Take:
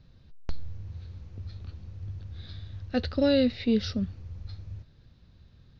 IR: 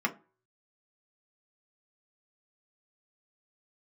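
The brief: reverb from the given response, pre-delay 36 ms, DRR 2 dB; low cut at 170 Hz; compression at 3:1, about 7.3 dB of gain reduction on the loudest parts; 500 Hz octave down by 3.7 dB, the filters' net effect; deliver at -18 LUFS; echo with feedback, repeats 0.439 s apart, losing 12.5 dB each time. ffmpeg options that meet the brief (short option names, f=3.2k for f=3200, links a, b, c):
-filter_complex "[0:a]highpass=170,equalizer=f=500:t=o:g=-4,acompressor=threshold=-31dB:ratio=3,aecho=1:1:439|878|1317:0.237|0.0569|0.0137,asplit=2[a][b];[1:a]atrim=start_sample=2205,adelay=36[c];[b][c]afir=irnorm=-1:irlink=0,volume=-11dB[d];[a][d]amix=inputs=2:normalize=0,volume=15.5dB"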